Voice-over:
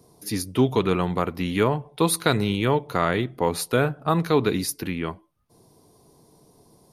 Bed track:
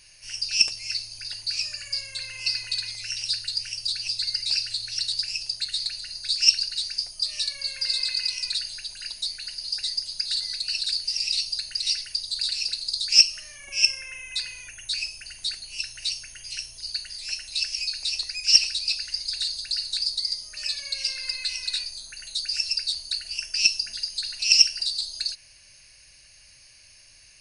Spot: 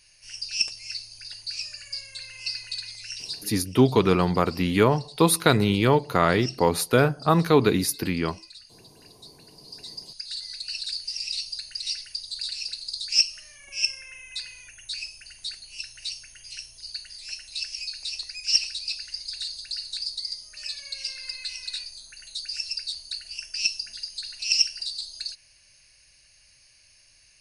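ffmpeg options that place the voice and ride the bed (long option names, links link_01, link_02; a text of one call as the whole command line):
ffmpeg -i stem1.wav -i stem2.wav -filter_complex "[0:a]adelay=3200,volume=2dB[link_01];[1:a]volume=8.5dB,afade=type=out:start_time=3.16:duration=0.51:silence=0.211349,afade=type=in:start_time=9.51:duration=1.21:silence=0.211349[link_02];[link_01][link_02]amix=inputs=2:normalize=0" out.wav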